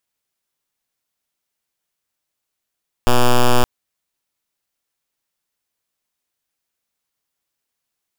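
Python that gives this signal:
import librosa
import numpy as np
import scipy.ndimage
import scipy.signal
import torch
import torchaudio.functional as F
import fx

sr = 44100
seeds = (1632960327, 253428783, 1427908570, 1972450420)

y = fx.pulse(sr, length_s=0.57, hz=123.0, level_db=-10.5, duty_pct=6)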